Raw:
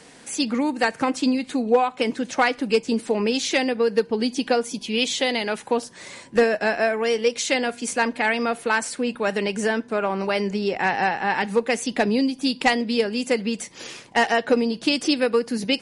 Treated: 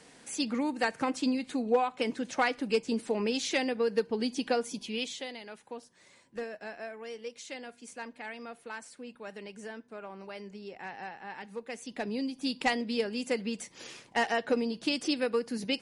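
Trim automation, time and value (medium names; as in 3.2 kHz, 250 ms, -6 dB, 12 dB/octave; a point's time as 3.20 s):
4.81 s -8 dB
5.38 s -20 dB
11.51 s -20 dB
12.52 s -9 dB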